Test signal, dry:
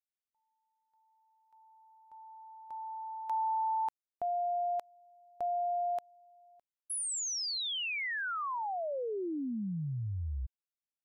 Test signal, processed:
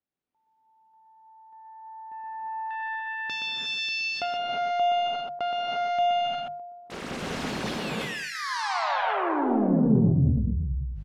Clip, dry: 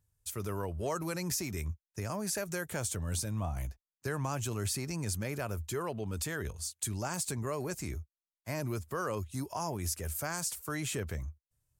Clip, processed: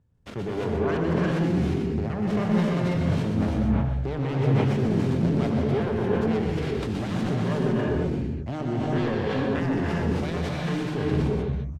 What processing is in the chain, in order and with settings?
self-modulated delay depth 0.96 ms; Bessel low-pass 2600 Hz, order 2; bell 220 Hz +14 dB 2.9 oct; notches 50/100/150/200 Hz; in parallel at +3 dB: compressor, threshold -35 dBFS; on the sum: soft clip -17 dBFS; echo 0.122 s -5 dB; non-linear reverb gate 0.38 s rising, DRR -3 dB; sustainer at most 36 dB/s; gain -4.5 dB

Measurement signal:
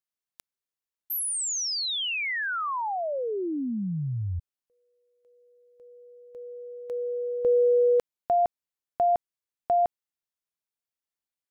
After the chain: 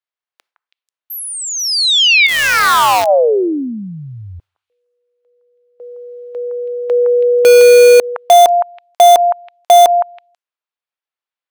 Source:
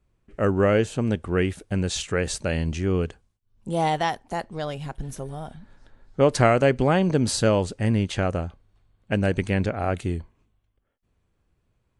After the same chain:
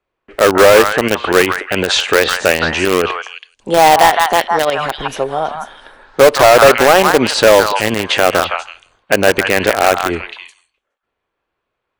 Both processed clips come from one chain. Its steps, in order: gate with hold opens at -55 dBFS, hold 14 ms, range -16 dB; three-band isolator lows -22 dB, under 370 Hz, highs -17 dB, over 4200 Hz; on a send: delay with a stepping band-pass 0.163 s, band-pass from 1200 Hz, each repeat 1.4 oct, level -1.5 dB; on the sum: hard clip -22 dBFS; in parallel at -3 dB: bit-crush 4-bit; on the sum: maximiser +22 dB; gain -1 dB

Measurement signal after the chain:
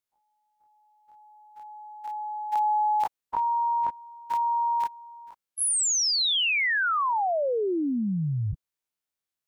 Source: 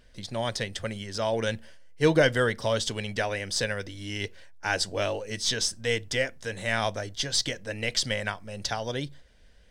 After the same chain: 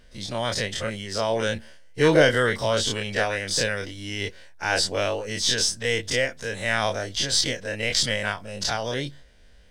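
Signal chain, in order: spectral dilation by 60 ms

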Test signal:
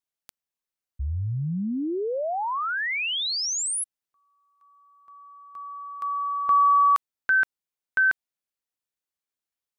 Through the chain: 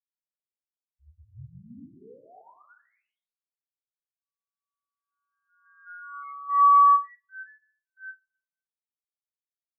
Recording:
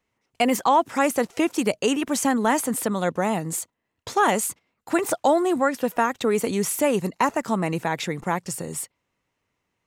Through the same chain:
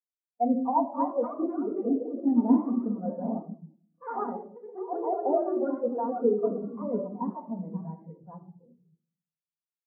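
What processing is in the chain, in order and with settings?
LPF 1300 Hz 12 dB/oct; notches 50/100/150/200/250/300/350/400 Hz; upward compressor, threshold -44 dBFS; echoes that change speed 0.355 s, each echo +2 st, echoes 3; shoebox room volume 1100 m³, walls mixed, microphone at 1.8 m; spectral expander 2.5:1; gain -6.5 dB

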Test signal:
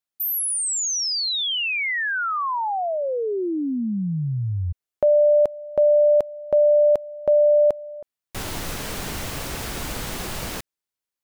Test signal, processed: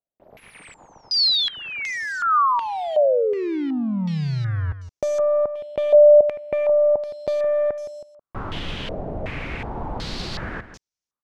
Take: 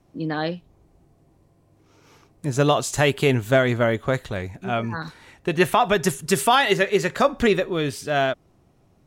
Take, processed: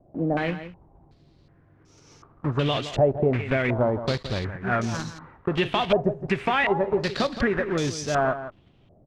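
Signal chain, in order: block floating point 3-bit; low shelf 500 Hz +7.5 dB; compressor, threshold -15 dBFS; echo 0.167 s -12 dB; stepped low-pass 2.7 Hz 640–6000 Hz; gain -5.5 dB

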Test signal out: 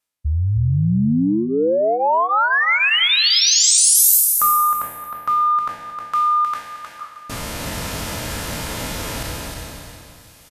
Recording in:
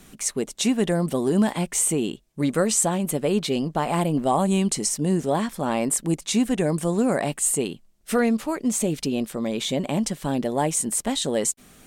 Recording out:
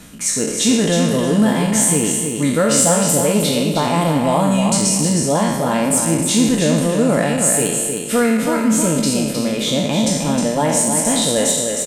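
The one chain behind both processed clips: spectral trails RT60 1.04 s; brick-wall FIR low-pass 14000 Hz; reverse; upward compressor, threshold -25 dBFS; reverse; soft clip -6.5 dBFS; notch comb 380 Hz; on a send: feedback echo 0.312 s, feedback 24%, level -5.5 dB; on the sum: gain +5 dB

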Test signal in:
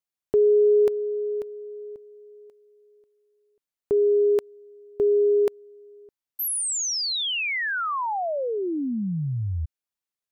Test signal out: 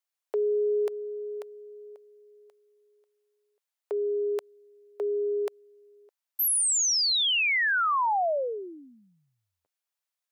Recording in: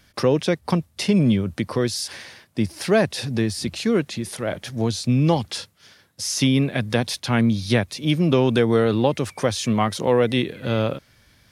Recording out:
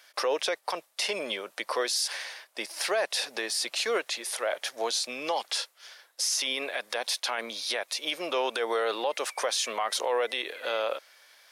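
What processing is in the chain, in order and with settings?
HPF 550 Hz 24 dB/oct; limiter -20.5 dBFS; gain +2 dB

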